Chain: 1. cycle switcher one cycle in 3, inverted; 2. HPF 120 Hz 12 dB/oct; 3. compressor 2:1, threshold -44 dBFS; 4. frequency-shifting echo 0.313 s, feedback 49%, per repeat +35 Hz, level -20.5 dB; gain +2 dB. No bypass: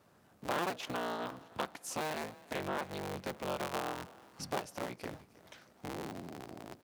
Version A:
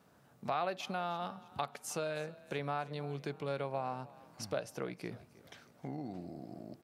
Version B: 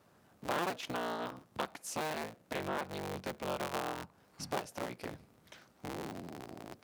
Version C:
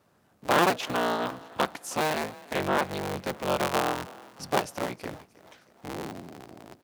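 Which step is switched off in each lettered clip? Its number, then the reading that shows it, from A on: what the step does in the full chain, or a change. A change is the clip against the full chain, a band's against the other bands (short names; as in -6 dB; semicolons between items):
1, 125 Hz band +5.5 dB; 4, echo-to-direct -19.5 dB to none; 3, mean gain reduction 7.0 dB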